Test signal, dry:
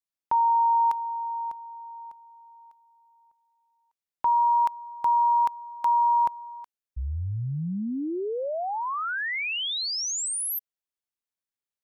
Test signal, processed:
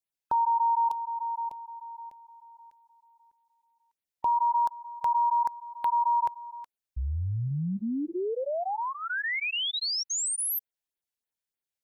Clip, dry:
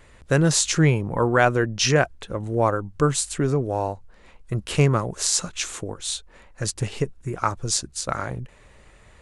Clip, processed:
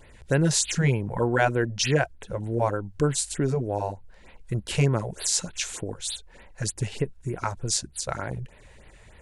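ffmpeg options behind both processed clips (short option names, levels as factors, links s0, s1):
-filter_complex "[0:a]equalizer=f=1200:w=7.8:g=-12.5,asplit=2[s0][s1];[s1]acompressor=threshold=0.0355:ratio=6:attack=3.8:release=678:knee=1:detection=peak,volume=0.75[s2];[s0][s2]amix=inputs=2:normalize=0,afftfilt=real='re*(1-between(b*sr/1024,230*pow(7000/230,0.5+0.5*sin(2*PI*3.3*pts/sr))/1.41,230*pow(7000/230,0.5+0.5*sin(2*PI*3.3*pts/sr))*1.41))':imag='im*(1-between(b*sr/1024,230*pow(7000/230,0.5+0.5*sin(2*PI*3.3*pts/sr))/1.41,230*pow(7000/230,0.5+0.5*sin(2*PI*3.3*pts/sr))*1.41))':win_size=1024:overlap=0.75,volume=0.631"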